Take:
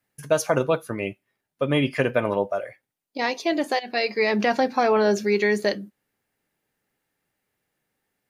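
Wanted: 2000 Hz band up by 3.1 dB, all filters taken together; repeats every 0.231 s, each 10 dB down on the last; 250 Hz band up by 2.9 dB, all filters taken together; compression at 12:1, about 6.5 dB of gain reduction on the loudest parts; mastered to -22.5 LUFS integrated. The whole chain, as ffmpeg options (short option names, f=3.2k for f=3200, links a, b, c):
-af "equalizer=f=250:t=o:g=3.5,equalizer=f=2k:t=o:g=3.5,acompressor=threshold=-21dB:ratio=12,aecho=1:1:231|462|693|924:0.316|0.101|0.0324|0.0104,volume=4.5dB"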